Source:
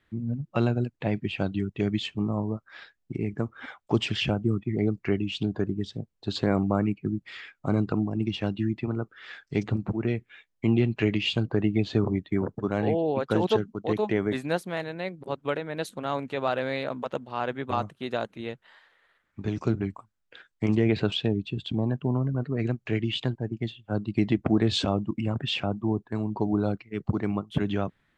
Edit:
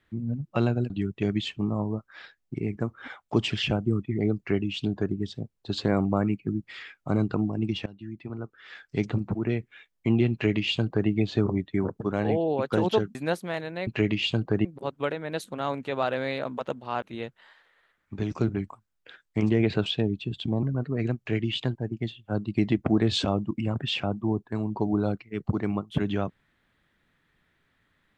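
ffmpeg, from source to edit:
ffmpeg -i in.wav -filter_complex "[0:a]asplit=8[link_01][link_02][link_03][link_04][link_05][link_06][link_07][link_08];[link_01]atrim=end=0.902[link_09];[link_02]atrim=start=1.478:end=8.44,asetpts=PTS-STARTPTS,afade=type=out:start_time=6.958:duration=0.004:curve=hsin:silence=0.0891251[link_10];[link_03]atrim=start=8.44:end=13.732,asetpts=PTS-STARTPTS,afade=type=in:duration=1.15:silence=0.0891251[link_11];[link_04]atrim=start=14.378:end=15.102[link_12];[link_05]atrim=start=10.898:end=11.682[link_13];[link_06]atrim=start=15.098:end=17.472[link_14];[link_07]atrim=start=18.278:end=21.892[link_15];[link_08]atrim=start=22.228[link_16];[link_10][link_11]concat=n=2:v=0:a=1[link_17];[link_09][link_17]acrossfade=duration=0.004:curve1=hsin:curve2=hsin[link_18];[link_18][link_12]acrossfade=duration=0.004:curve1=hsin:curve2=hsin[link_19];[link_19][link_13]acrossfade=duration=0.004:curve1=hsin:curve2=hsin[link_20];[link_20][link_14]acrossfade=duration=0.004:curve1=hsin:curve2=hsin[link_21];[link_21][link_15]acrossfade=duration=0.004:curve1=hsin:curve2=hsin[link_22];[link_22][link_16]acrossfade=duration=0.004:curve1=hsin:curve2=hsin" out.wav

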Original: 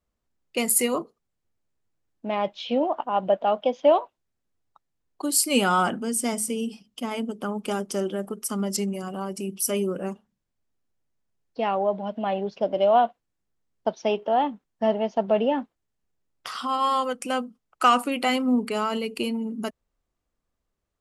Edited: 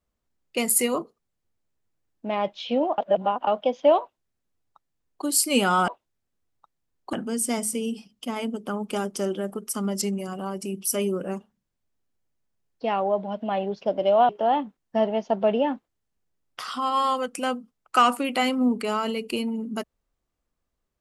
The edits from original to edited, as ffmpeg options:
ffmpeg -i in.wav -filter_complex "[0:a]asplit=6[link_01][link_02][link_03][link_04][link_05][link_06];[link_01]atrim=end=2.982[link_07];[link_02]atrim=start=2.978:end=3.472,asetpts=PTS-STARTPTS,areverse[link_08];[link_03]atrim=start=3.468:end=5.882[link_09];[link_04]atrim=start=3.998:end=5.252[link_10];[link_05]atrim=start=5.878:end=13.042[link_11];[link_06]atrim=start=14.158[link_12];[link_07][link_08]acrossfade=duration=0.004:curve1=hsin:curve2=hsin[link_13];[link_13][link_09]acrossfade=duration=0.004:curve1=hsin:curve2=hsin[link_14];[link_14][link_10]acrossfade=duration=0.004:curve1=hsin:curve2=hsin[link_15];[link_15][link_11]acrossfade=duration=0.004:curve1=hsin:curve2=hsin[link_16];[link_16][link_12]acrossfade=duration=0.004:curve1=hsin:curve2=hsin" out.wav

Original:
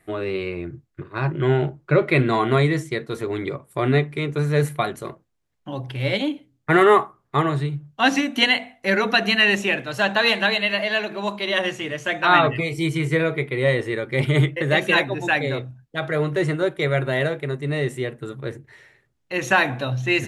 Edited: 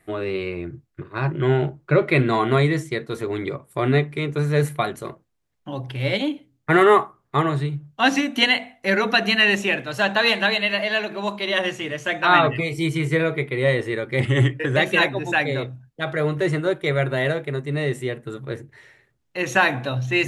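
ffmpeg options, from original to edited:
ffmpeg -i in.wav -filter_complex "[0:a]asplit=3[link_01][link_02][link_03];[link_01]atrim=end=14.204[link_04];[link_02]atrim=start=14.2:end=14.72,asetpts=PTS-STARTPTS,asetrate=40572,aresample=44100,atrim=end_sample=24926,asetpts=PTS-STARTPTS[link_05];[link_03]atrim=start=14.716[link_06];[link_04][link_05]acrossfade=duration=0.004:curve1=hsin:curve2=hsin[link_07];[link_07][link_06]acrossfade=duration=0.004:curve1=hsin:curve2=hsin" out.wav

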